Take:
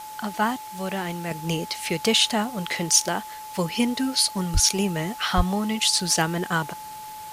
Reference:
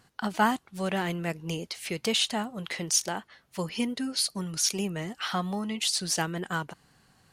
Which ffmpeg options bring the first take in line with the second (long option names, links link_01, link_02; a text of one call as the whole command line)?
ffmpeg -i in.wav -filter_complex "[0:a]bandreject=frequency=860:width=30,asplit=3[link_01][link_02][link_03];[link_01]afade=type=out:start_time=4.53:duration=0.02[link_04];[link_02]highpass=frequency=140:width=0.5412,highpass=frequency=140:width=1.3066,afade=type=in:start_time=4.53:duration=0.02,afade=type=out:start_time=4.65:duration=0.02[link_05];[link_03]afade=type=in:start_time=4.65:duration=0.02[link_06];[link_04][link_05][link_06]amix=inputs=3:normalize=0,asplit=3[link_07][link_08][link_09];[link_07]afade=type=out:start_time=5.36:duration=0.02[link_10];[link_08]highpass=frequency=140:width=0.5412,highpass=frequency=140:width=1.3066,afade=type=in:start_time=5.36:duration=0.02,afade=type=out:start_time=5.48:duration=0.02[link_11];[link_09]afade=type=in:start_time=5.48:duration=0.02[link_12];[link_10][link_11][link_12]amix=inputs=3:normalize=0,afwtdn=0.0063,asetnsamples=nb_out_samples=441:pad=0,asendcmd='1.31 volume volume -6.5dB',volume=0dB" out.wav